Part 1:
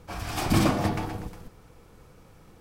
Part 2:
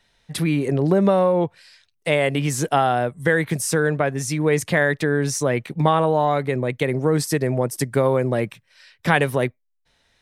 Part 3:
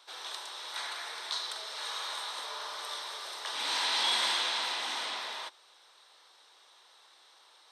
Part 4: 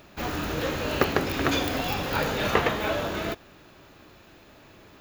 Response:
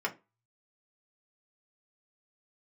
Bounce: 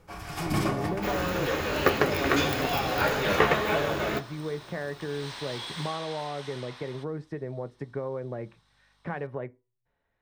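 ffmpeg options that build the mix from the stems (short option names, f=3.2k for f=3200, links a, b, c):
-filter_complex "[0:a]volume=-8dB,asplit=2[a][b];[b]volume=-7.5dB[c];[1:a]lowpass=1.4k,acompressor=threshold=-23dB:ratio=2,volume=-11.5dB,asplit=2[d][e];[e]volume=-14.5dB[f];[2:a]aeval=exprs='val(0)+0.00112*(sin(2*PI*50*n/s)+sin(2*PI*2*50*n/s)/2+sin(2*PI*3*50*n/s)/3+sin(2*PI*4*50*n/s)/4+sin(2*PI*5*50*n/s)/5)':c=same,adelay=1550,volume=-11.5dB,asplit=2[g][h];[h]volume=-13dB[i];[3:a]flanger=delay=6.5:depth=9.6:regen=41:speed=1.7:shape=triangular,adelay=850,volume=1.5dB,asplit=2[j][k];[k]volume=-9.5dB[l];[4:a]atrim=start_sample=2205[m];[c][f][i][l]amix=inputs=4:normalize=0[n];[n][m]afir=irnorm=-1:irlink=0[o];[a][d][g][j][o]amix=inputs=5:normalize=0"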